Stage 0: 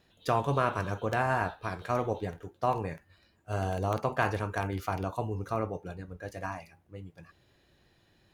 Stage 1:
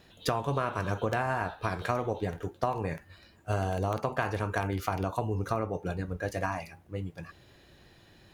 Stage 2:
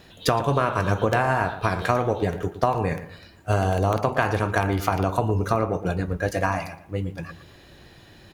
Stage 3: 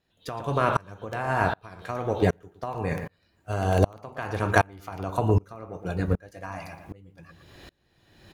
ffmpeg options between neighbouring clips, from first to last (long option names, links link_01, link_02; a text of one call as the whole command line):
ffmpeg -i in.wav -af "acompressor=threshold=-35dB:ratio=6,volume=8.5dB" out.wav
ffmpeg -i in.wav -filter_complex "[0:a]asplit=2[link_01][link_02];[link_02]adelay=115,lowpass=frequency=2300:poles=1,volume=-12dB,asplit=2[link_03][link_04];[link_04]adelay=115,lowpass=frequency=2300:poles=1,volume=0.33,asplit=2[link_05][link_06];[link_06]adelay=115,lowpass=frequency=2300:poles=1,volume=0.33[link_07];[link_01][link_03][link_05][link_07]amix=inputs=4:normalize=0,volume=8dB" out.wav
ffmpeg -i in.wav -af "aeval=exprs='val(0)*pow(10,-32*if(lt(mod(-1.3*n/s,1),2*abs(-1.3)/1000),1-mod(-1.3*n/s,1)/(2*abs(-1.3)/1000),(mod(-1.3*n/s,1)-2*abs(-1.3)/1000)/(1-2*abs(-1.3)/1000))/20)':channel_layout=same,volume=5dB" out.wav